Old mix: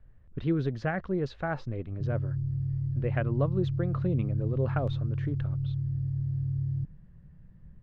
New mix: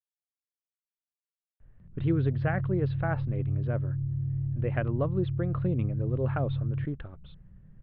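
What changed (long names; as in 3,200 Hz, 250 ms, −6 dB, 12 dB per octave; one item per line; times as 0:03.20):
speech: entry +1.60 s
master: add inverse Chebyshev low-pass filter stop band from 8,300 Hz, stop band 50 dB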